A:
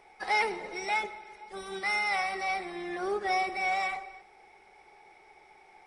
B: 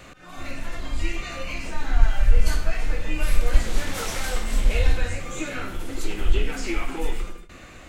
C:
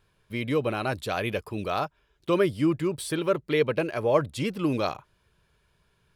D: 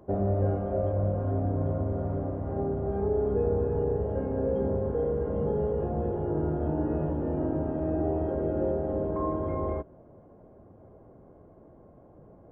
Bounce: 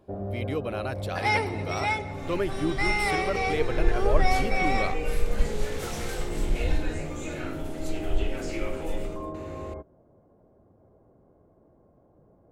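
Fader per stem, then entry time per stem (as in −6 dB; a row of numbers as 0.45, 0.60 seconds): +2.0, −7.0, −5.5, −6.5 decibels; 0.95, 1.85, 0.00, 0.00 seconds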